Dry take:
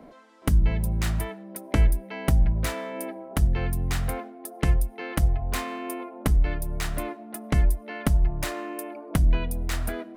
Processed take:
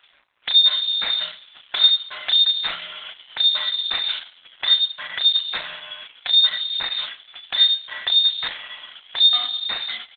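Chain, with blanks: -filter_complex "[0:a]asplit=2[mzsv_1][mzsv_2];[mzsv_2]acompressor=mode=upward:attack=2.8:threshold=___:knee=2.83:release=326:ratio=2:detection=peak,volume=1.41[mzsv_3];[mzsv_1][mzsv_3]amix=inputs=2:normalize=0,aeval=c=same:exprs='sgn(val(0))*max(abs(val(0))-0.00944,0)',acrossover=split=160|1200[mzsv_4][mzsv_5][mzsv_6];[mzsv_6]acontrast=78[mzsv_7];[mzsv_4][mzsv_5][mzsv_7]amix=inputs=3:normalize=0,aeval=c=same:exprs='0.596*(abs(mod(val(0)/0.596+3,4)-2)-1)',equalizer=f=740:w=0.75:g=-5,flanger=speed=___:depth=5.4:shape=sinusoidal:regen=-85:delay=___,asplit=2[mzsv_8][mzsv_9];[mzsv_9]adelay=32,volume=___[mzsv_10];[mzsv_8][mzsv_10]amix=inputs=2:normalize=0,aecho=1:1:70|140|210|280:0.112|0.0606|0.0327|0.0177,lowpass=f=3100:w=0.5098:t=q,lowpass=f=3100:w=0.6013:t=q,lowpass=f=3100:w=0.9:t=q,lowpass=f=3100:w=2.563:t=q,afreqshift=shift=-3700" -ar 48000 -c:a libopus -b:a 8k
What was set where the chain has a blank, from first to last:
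0.01, 0.71, 0.4, 0.447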